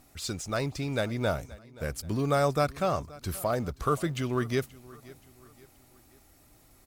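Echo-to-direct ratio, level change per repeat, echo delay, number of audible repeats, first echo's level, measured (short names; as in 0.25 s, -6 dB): -20.0 dB, -7.0 dB, 0.527 s, 2, -21.0 dB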